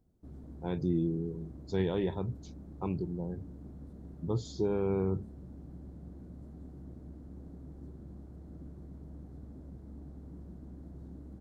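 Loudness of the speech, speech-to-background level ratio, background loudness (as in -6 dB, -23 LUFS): -34.5 LUFS, 14.5 dB, -49.0 LUFS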